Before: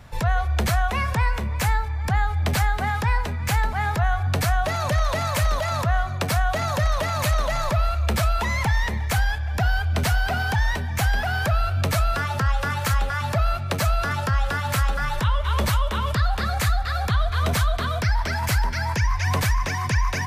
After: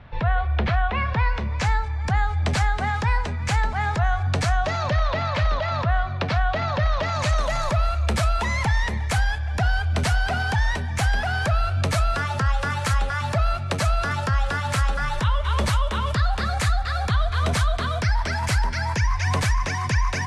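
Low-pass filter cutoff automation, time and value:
low-pass filter 24 dB per octave
0:00.99 3,500 Hz
0:01.84 8,100 Hz
0:04.50 8,100 Hz
0:05.04 4,400 Hz
0:06.92 4,400 Hz
0:07.45 10,000 Hz

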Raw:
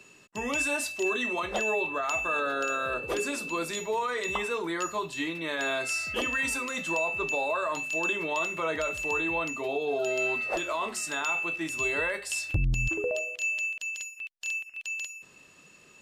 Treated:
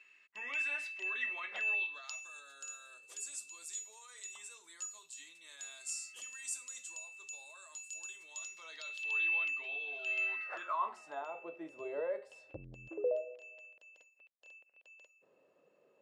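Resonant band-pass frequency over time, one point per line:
resonant band-pass, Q 3.6
0:01.61 2,100 Hz
0:02.33 7,600 Hz
0:08.29 7,600 Hz
0:09.31 2,600 Hz
0:10.11 2,600 Hz
0:11.36 540 Hz

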